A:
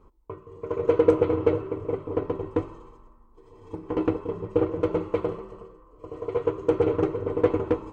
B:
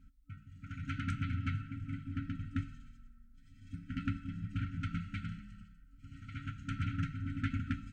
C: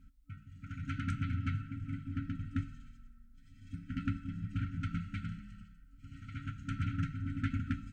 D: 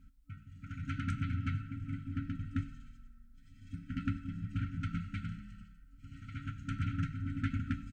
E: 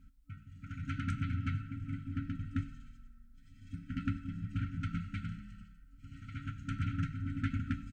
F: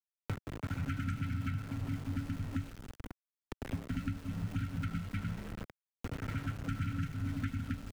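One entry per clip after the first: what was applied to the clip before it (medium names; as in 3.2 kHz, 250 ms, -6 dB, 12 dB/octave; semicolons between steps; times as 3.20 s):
FFT band-reject 280–1300 Hz; trim -2 dB
dynamic bell 2.8 kHz, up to -3 dB, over -59 dBFS, Q 0.71; trim +1 dB
delay 97 ms -21 dB
no audible change
small samples zeroed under -47 dBFS; three bands compressed up and down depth 100%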